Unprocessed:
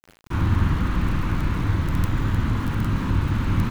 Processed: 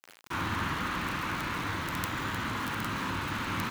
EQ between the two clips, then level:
high-pass filter 1,000 Hz 6 dB per octave
+2.5 dB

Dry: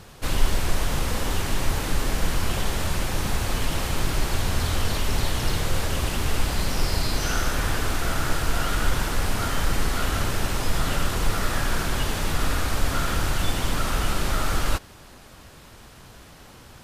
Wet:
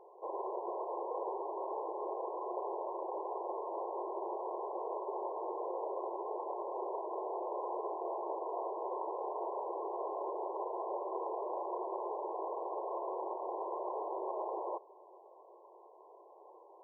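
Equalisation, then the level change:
linear-phase brick-wall band-pass 340–1,100 Hz
−3.5 dB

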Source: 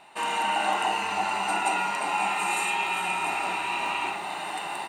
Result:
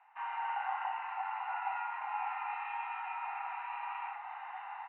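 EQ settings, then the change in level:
elliptic high-pass filter 780 Hz, stop band 40 dB
low-pass filter 2,200 Hz 24 dB per octave
high-frequency loss of the air 320 metres
−7.5 dB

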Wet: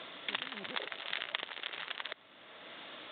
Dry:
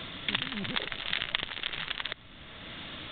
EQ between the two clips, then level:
resonant band-pass 510 Hz, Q 0.93
spectral tilt +4 dB per octave
+1.5 dB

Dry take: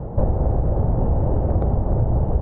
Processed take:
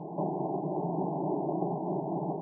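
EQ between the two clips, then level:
linear-phase brick-wall band-pass 160–1,100 Hz
high-frequency loss of the air 420 metres
phaser with its sweep stopped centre 340 Hz, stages 8
0.0 dB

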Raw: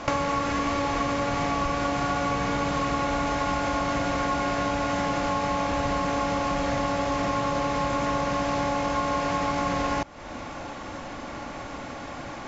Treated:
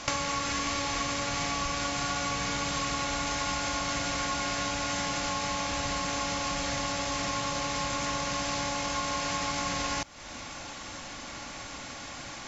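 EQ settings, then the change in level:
bass and treble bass +5 dB, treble +5 dB
tilt shelving filter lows −7.5 dB, about 1,500 Hz
−3.5 dB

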